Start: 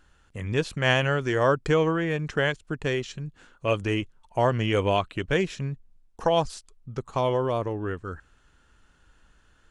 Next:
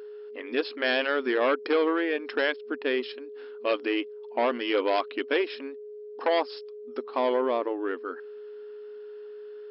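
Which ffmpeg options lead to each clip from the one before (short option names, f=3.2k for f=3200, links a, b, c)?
-af "aeval=exprs='0.422*(cos(1*acos(clip(val(0)/0.422,-1,1)))-cos(1*PI/2))+0.168*(cos(5*acos(clip(val(0)/0.422,-1,1)))-cos(5*PI/2))':c=same,afftfilt=real='re*between(b*sr/4096,230,5400)':imag='im*between(b*sr/4096,230,5400)':win_size=4096:overlap=0.75,aeval=exprs='val(0)+0.0282*sin(2*PI*420*n/s)':c=same,volume=-8dB"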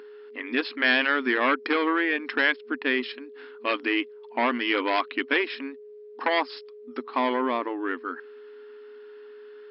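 -af "equalizer=f=125:t=o:w=1:g=-7,equalizer=f=250:t=o:w=1:g=12,equalizer=f=500:t=o:w=1:g=-5,equalizer=f=1k:t=o:w=1:g=7,equalizer=f=2k:t=o:w=1:g=10,equalizer=f=4k:t=o:w=1:g=5,volume=-4dB"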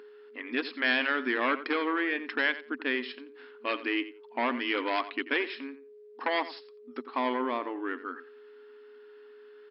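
-filter_complex "[0:a]asplit=2[a][b];[b]adelay=87,lowpass=f=4.1k:p=1,volume=-14dB,asplit=2[c][d];[d]adelay=87,lowpass=f=4.1k:p=1,volume=0.17[e];[a][c][e]amix=inputs=3:normalize=0,volume=-5dB"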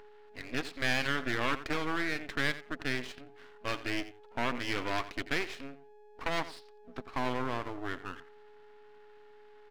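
-af "aeval=exprs='max(val(0),0)':c=same"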